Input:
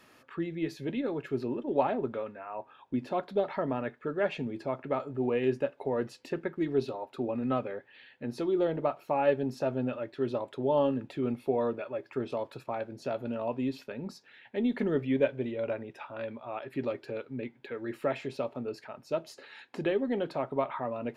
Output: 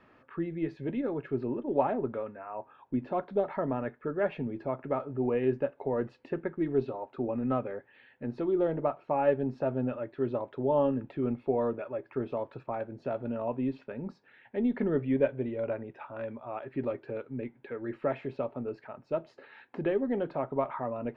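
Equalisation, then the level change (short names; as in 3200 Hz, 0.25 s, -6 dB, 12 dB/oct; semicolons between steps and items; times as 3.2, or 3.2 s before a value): LPF 1900 Hz 12 dB/oct; low shelf 66 Hz +8 dB; 0.0 dB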